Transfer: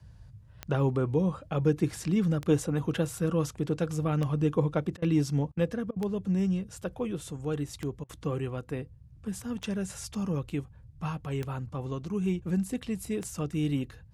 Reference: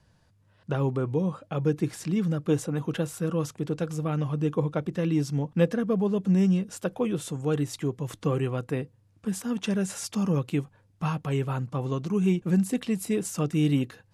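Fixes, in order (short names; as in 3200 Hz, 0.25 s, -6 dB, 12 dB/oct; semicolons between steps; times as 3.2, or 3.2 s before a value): de-click; interpolate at 4.97/5.52/5.91/8.04, 51 ms; noise print and reduce 9 dB; gain 0 dB, from 5.52 s +5.5 dB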